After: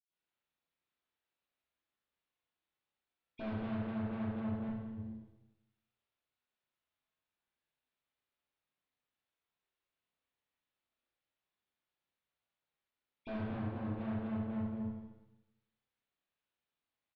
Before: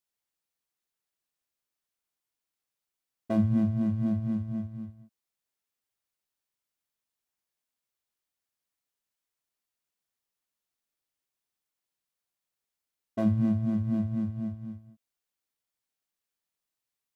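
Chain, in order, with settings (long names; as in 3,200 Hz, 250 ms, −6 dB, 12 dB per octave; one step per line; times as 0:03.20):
0:04.59–0:04.99: compressor whose output falls as the input rises −44 dBFS, ratio −0.5
0:13.40–0:13.84: comb filter 7.1 ms, depth 50%
tube saturation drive 42 dB, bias 0.6
single-tap delay 217 ms −15 dB
convolution reverb RT60 0.95 s, pre-delay 76 ms
level +3.5 dB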